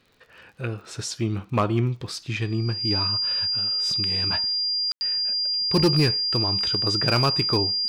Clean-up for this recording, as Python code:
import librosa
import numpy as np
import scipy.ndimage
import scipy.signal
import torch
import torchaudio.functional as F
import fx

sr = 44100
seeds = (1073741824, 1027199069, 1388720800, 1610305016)

y = fx.fix_declip(x, sr, threshold_db=-13.5)
y = fx.fix_declick_ar(y, sr, threshold=6.5)
y = fx.notch(y, sr, hz=4800.0, q=30.0)
y = fx.fix_ambience(y, sr, seeds[0], print_start_s=0.0, print_end_s=0.5, start_s=4.92, end_s=5.01)